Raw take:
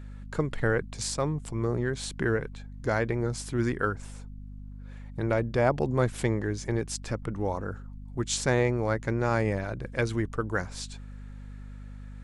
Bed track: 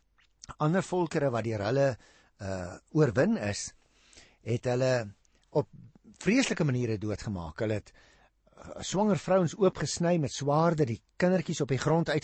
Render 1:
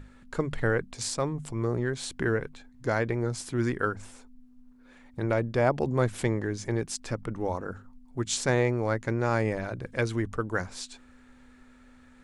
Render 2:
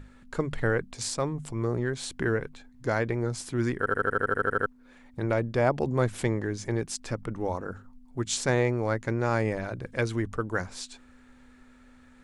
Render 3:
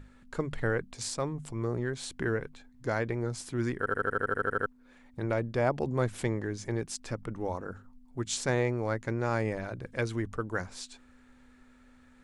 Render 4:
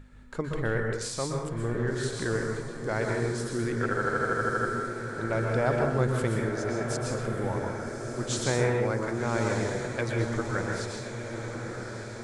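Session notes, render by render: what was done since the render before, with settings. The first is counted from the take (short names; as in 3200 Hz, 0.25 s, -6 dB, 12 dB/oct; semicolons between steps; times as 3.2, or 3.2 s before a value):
notches 50/100/150/200 Hz
3.78 stutter in place 0.08 s, 11 plays
gain -3.5 dB
diffused feedback echo 1.168 s, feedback 63%, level -8 dB; plate-style reverb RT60 0.69 s, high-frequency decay 0.75×, pre-delay 0.11 s, DRR 1 dB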